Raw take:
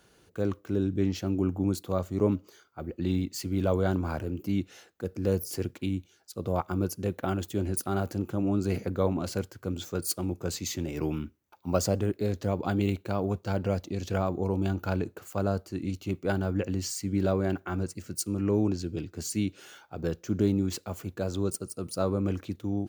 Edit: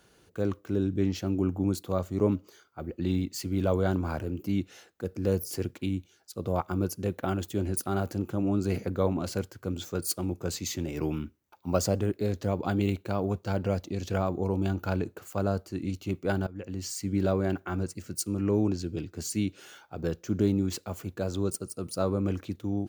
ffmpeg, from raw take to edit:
-filter_complex "[0:a]asplit=2[a][b];[a]atrim=end=16.47,asetpts=PTS-STARTPTS,afade=t=out:st=16.466:d=0.004:c=hsin:silence=0.105925[c];[b]atrim=start=16.47,asetpts=PTS-STARTPTS,afade=t=in:d=0.56:silence=0.105925[d];[c][d]concat=n=2:v=0:a=1"

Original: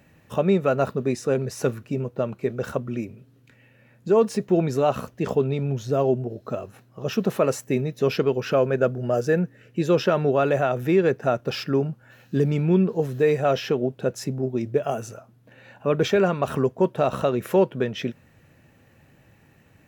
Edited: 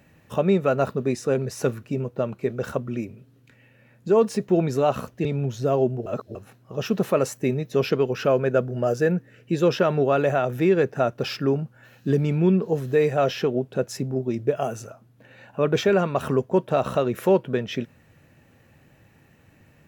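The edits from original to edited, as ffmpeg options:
-filter_complex "[0:a]asplit=4[a][b][c][d];[a]atrim=end=5.252[e];[b]atrim=start=5.518:end=6.332[f];[c]atrim=start=6.328:end=6.622,asetpts=PTS-STARTPTS,areverse[g];[d]atrim=start=6.618[h];[e][f]acrossfade=d=0.004:c1=hsin:c2=hsin[i];[i][g]acrossfade=d=0.004:c1=hsin:c2=hsin[j];[j][h]acrossfade=d=0.004:c1=hsin:c2=hsin"

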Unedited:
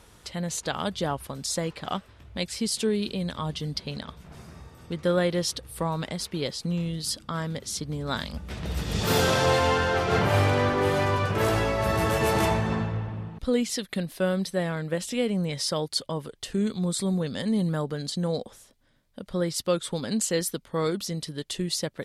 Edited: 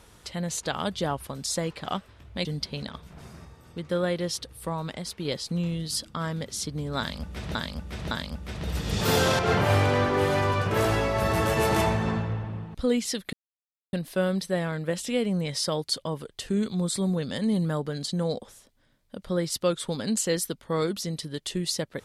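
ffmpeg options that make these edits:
-filter_complex "[0:a]asplit=8[a][b][c][d][e][f][g][h];[a]atrim=end=2.452[i];[b]atrim=start=3.588:end=4.592[j];[c]atrim=start=4.588:end=6.392,asetpts=PTS-STARTPTS,volume=-3dB[k];[d]atrim=start=6.388:end=8.692[l];[e]atrim=start=8.128:end=8.692[m];[f]atrim=start=8.128:end=9.412[n];[g]atrim=start=10.028:end=13.97,asetpts=PTS-STARTPTS,afade=t=out:st=3.938:d=0.004:c=hsin,apad=pad_dur=0.6[o];[h]atrim=start=13.97,asetpts=PTS-STARTPTS,afade=t=in:d=0.004:c=hsin[p];[i][j]acrossfade=d=0.004:c1=hsin:c2=hsin[q];[q][k]acrossfade=d=0.004:c1=hsin:c2=hsin[r];[r][l]acrossfade=d=0.004:c1=hsin:c2=hsin[s];[s][m]acrossfade=d=0.004:c1=hsin:c2=hsin[t];[t][n]acrossfade=d=0.004:c1=hsin:c2=hsin[u];[o][p]concat=n=2:v=0:a=1[v];[u][v]acrossfade=d=0.004:c1=hsin:c2=hsin"

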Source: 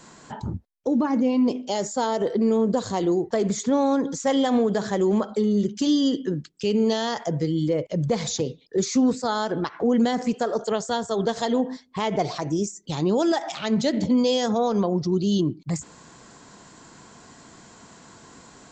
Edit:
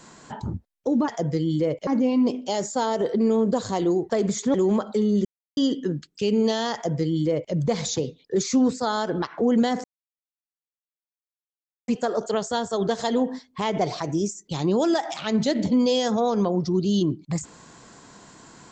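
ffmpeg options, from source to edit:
-filter_complex "[0:a]asplit=7[a][b][c][d][e][f][g];[a]atrim=end=1.082[h];[b]atrim=start=7.158:end=7.952[i];[c]atrim=start=1.078:end=3.752[j];[d]atrim=start=4.958:end=5.67,asetpts=PTS-STARTPTS,afade=t=out:st=0.708:d=0.004:c=hsin[k];[e]atrim=start=5.67:end=5.99,asetpts=PTS-STARTPTS,volume=0[l];[f]atrim=start=5.99:end=10.26,asetpts=PTS-STARTPTS,afade=t=in:d=0.004:c=hsin,afade=t=out:st=4.266:d=0.004:c=hsin,apad=pad_dur=2.04[m];[g]atrim=start=10.26,asetpts=PTS-STARTPTS,afade=t=in:d=0.004:c=hsin[n];[h][i]acrossfade=d=0.004:c1=hsin:c2=hsin[o];[o][j]acrossfade=d=0.004:c1=hsin:c2=hsin[p];[k][l][m][n]concat=n=4:v=0:a=1[q];[p][q]acrossfade=d=0.004:c1=hsin:c2=hsin"

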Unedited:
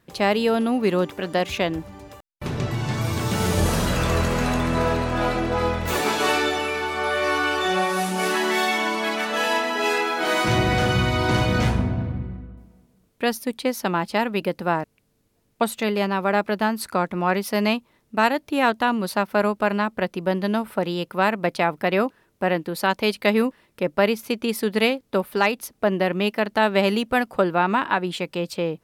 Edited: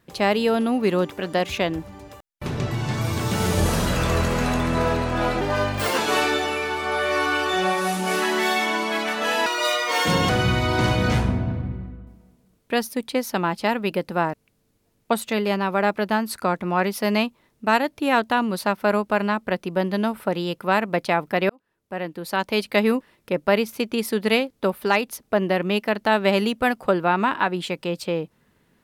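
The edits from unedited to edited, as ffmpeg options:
-filter_complex "[0:a]asplit=6[a][b][c][d][e][f];[a]atrim=end=5.414[g];[b]atrim=start=5.41:end=6.1,asetpts=PTS-STARTPTS,asetrate=53361,aresample=44100[h];[c]atrim=start=6.096:end=9.584[i];[d]atrim=start=9.58:end=10.8,asetpts=PTS-STARTPTS,asetrate=64386,aresample=44100[j];[e]atrim=start=10.796:end=22,asetpts=PTS-STARTPTS,afade=t=out:st=11.2:d=0.004:c=hsin[k];[f]atrim=start=22,asetpts=PTS-STARTPTS,afade=t=in:d=1.18[l];[g][h]acrossfade=d=0.004:c1=hsin:c2=hsin[m];[m][i]acrossfade=d=0.004:c1=hsin:c2=hsin[n];[n][j]acrossfade=d=0.004:c1=hsin:c2=hsin[o];[k][l]concat=n=2:v=0:a=1[p];[o][p]acrossfade=d=0.004:c1=hsin:c2=hsin"

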